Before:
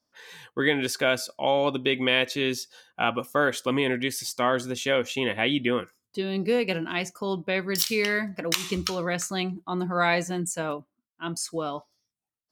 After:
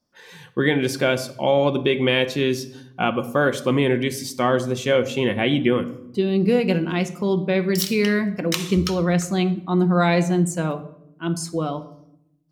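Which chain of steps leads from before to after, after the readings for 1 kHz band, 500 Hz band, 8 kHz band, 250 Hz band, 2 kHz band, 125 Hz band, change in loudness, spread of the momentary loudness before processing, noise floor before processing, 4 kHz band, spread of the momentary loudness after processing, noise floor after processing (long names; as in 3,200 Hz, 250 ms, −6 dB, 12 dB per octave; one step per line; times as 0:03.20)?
+2.5 dB, +6.0 dB, +0.5 dB, +8.5 dB, +1.0 dB, +11.5 dB, +5.0 dB, 9 LU, below −85 dBFS, +0.5 dB, 8 LU, −54 dBFS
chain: low-shelf EQ 440 Hz +10.5 dB
rectangular room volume 2,000 cubic metres, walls furnished, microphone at 0.95 metres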